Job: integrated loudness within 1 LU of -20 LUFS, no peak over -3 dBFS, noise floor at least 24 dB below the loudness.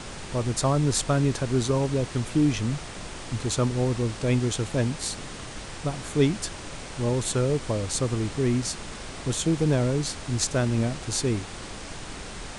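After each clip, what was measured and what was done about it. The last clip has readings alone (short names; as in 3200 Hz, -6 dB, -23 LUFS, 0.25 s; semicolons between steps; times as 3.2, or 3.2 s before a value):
noise floor -39 dBFS; noise floor target -50 dBFS; loudness -26.0 LUFS; peak -10.0 dBFS; loudness target -20.0 LUFS
-> noise print and reduce 11 dB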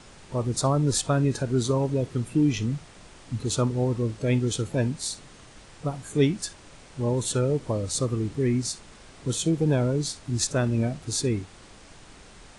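noise floor -50 dBFS; noise floor target -51 dBFS
-> noise print and reduce 6 dB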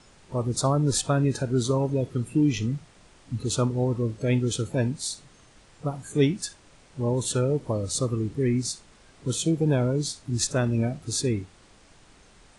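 noise floor -55 dBFS; loudness -26.5 LUFS; peak -10.5 dBFS; loudness target -20.0 LUFS
-> gain +6.5 dB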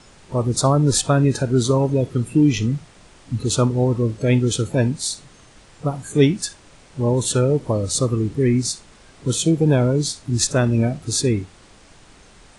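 loudness -20.0 LUFS; peak -4.0 dBFS; noise floor -49 dBFS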